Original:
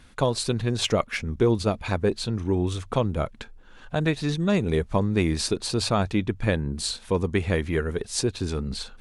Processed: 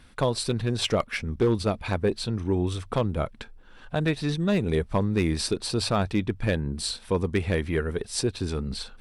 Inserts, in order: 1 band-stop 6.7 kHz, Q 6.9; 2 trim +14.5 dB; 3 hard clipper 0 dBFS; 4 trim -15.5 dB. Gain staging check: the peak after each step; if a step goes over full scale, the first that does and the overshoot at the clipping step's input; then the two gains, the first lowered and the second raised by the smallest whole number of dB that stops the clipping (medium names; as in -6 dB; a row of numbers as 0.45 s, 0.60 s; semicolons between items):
-9.0 dBFS, +5.5 dBFS, 0.0 dBFS, -15.5 dBFS; step 2, 5.5 dB; step 2 +8.5 dB, step 4 -9.5 dB